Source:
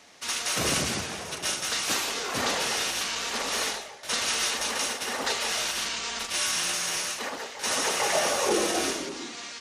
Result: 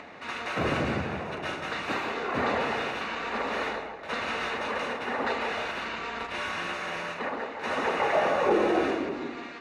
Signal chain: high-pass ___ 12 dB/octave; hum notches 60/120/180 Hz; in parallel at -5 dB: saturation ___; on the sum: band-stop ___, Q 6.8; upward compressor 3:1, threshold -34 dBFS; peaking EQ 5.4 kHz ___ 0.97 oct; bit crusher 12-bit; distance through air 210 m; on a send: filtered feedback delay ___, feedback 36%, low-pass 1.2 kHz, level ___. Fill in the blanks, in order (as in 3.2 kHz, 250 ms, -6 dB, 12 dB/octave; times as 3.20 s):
46 Hz, -22.5 dBFS, 3.2 kHz, -14.5 dB, 162 ms, -6 dB